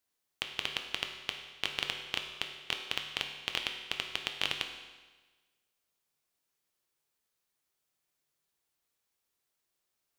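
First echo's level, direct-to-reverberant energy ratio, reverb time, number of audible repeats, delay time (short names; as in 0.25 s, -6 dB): none, 3.5 dB, 1.3 s, none, none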